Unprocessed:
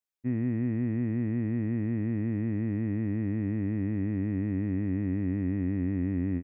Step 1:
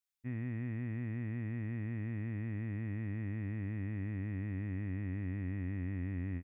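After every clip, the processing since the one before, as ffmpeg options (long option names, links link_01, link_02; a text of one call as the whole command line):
ffmpeg -i in.wav -af "equalizer=frequency=310:width_type=o:width=2.8:gain=-13.5" out.wav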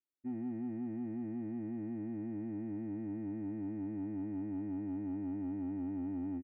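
ffmpeg -i in.wav -af "bandpass=frequency=310:width_type=q:width=1.7:csg=0,aecho=1:1:3.3:0.91,asoftclip=type=tanh:threshold=-37.5dB,volume=4.5dB" out.wav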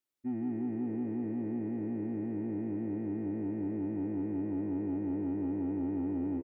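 ffmpeg -i in.wav -filter_complex "[0:a]asplit=7[link_01][link_02][link_03][link_04][link_05][link_06][link_07];[link_02]adelay=157,afreqshift=62,volume=-12dB[link_08];[link_03]adelay=314,afreqshift=124,volume=-17dB[link_09];[link_04]adelay=471,afreqshift=186,volume=-22.1dB[link_10];[link_05]adelay=628,afreqshift=248,volume=-27.1dB[link_11];[link_06]adelay=785,afreqshift=310,volume=-32.1dB[link_12];[link_07]adelay=942,afreqshift=372,volume=-37.2dB[link_13];[link_01][link_08][link_09][link_10][link_11][link_12][link_13]amix=inputs=7:normalize=0,volume=4.5dB" out.wav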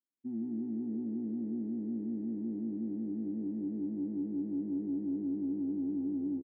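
ffmpeg -i in.wav -filter_complex "[0:a]bandpass=frequency=230:width_type=q:width=2:csg=0,asplit=2[link_01][link_02];[link_02]adelay=14,volume=-7dB[link_03];[link_01][link_03]amix=inputs=2:normalize=0" out.wav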